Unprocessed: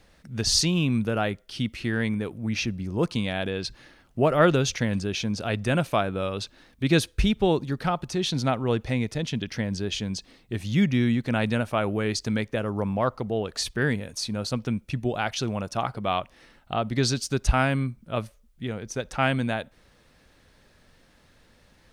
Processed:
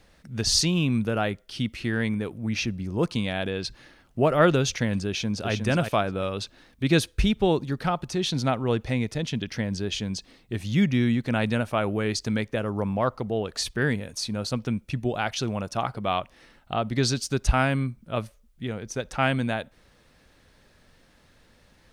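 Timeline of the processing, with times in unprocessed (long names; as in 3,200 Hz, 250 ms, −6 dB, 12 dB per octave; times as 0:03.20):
0:05.08–0:05.52: delay throw 360 ms, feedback 15%, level −6 dB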